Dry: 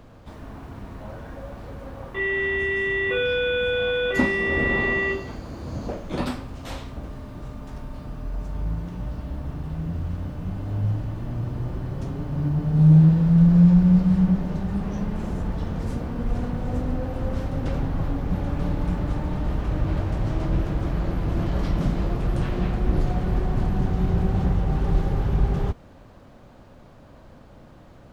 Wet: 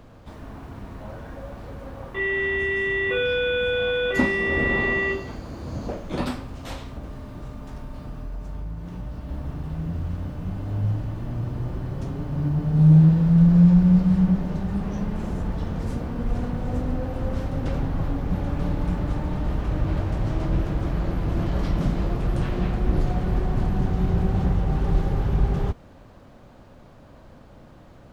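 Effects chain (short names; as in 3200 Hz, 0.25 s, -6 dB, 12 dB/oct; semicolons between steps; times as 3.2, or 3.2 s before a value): 6.72–9.29 compressor, threshold -29 dBFS, peak gain reduction 6.5 dB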